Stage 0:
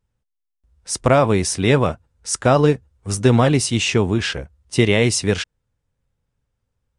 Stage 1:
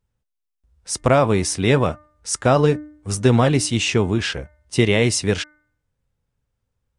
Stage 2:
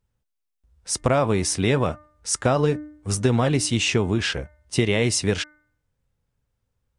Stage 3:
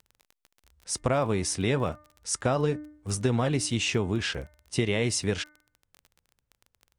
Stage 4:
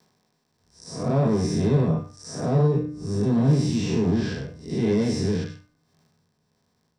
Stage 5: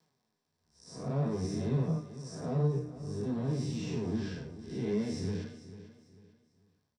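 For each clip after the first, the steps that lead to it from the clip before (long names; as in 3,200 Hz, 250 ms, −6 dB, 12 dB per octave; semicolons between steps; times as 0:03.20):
hum removal 300.5 Hz, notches 7; level −1 dB
downward compressor 3 to 1, threshold −17 dBFS, peak gain reduction 6 dB
surface crackle 25 per second −32 dBFS; level −5.5 dB
spectrum smeared in time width 192 ms; soft clipping −25.5 dBFS, distortion −13 dB; convolution reverb RT60 0.20 s, pre-delay 3 ms, DRR −3.5 dB; level −8 dB
flanger 0.52 Hz, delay 6 ms, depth 10 ms, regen +41%; repeating echo 445 ms, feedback 32%, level −14.5 dB; level −7.5 dB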